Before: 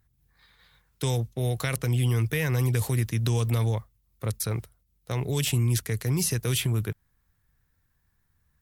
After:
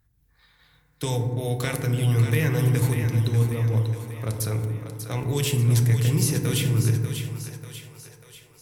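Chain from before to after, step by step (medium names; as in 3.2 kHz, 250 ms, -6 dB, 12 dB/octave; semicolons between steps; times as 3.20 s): 2.93–3.77 s: resonances exaggerated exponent 1.5; two-band feedback delay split 460 Hz, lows 151 ms, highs 591 ms, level -8 dB; FDN reverb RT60 1.7 s, low-frequency decay 1.55×, high-frequency decay 0.3×, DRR 4.5 dB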